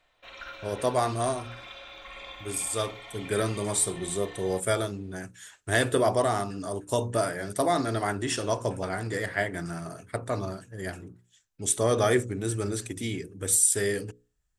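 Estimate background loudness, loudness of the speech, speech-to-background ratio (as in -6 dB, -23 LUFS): -43.5 LUFS, -28.0 LUFS, 15.5 dB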